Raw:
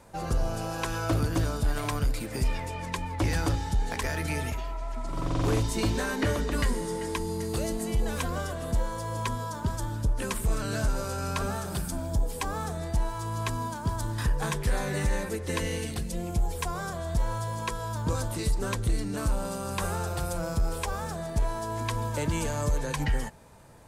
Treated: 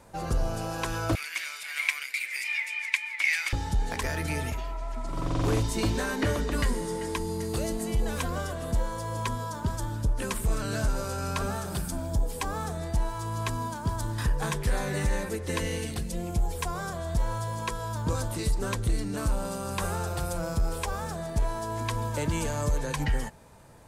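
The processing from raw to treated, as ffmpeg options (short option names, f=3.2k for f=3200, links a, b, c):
-filter_complex "[0:a]asettb=1/sr,asplit=3[a][b][c];[a]atrim=end=1.154[d];[b]atrim=start=1.15:end=3.53,asetpts=PTS-STARTPTS,afade=t=in:d=0.004:c=qsin,afade=t=out:st=2.376:d=0.004:c=qsin,highpass=f=2.2k:t=q:w=9.9[e];[c]atrim=start=3.526[f];[d][e]acrossfade=d=0.004:c1=hsin:c2=qsin[g];[g][f]acrossfade=d=0.004:c1=qsin:c2=hsin"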